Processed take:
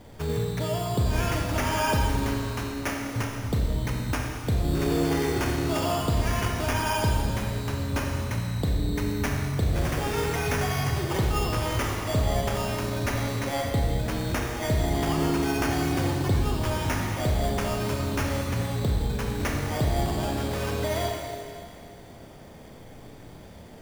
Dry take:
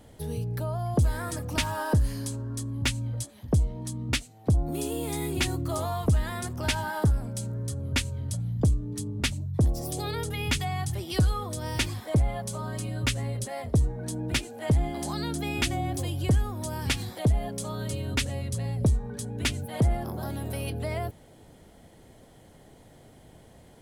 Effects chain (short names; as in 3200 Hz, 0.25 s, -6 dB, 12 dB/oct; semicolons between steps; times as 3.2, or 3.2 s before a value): 2.63–3.16 HPF 290 Hz 12 dB/oct; sample-and-hold 11×; limiter -24.5 dBFS, peak gain reduction 8.5 dB; Schroeder reverb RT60 2.3 s, combs from 28 ms, DRR -0.5 dB; gain +4 dB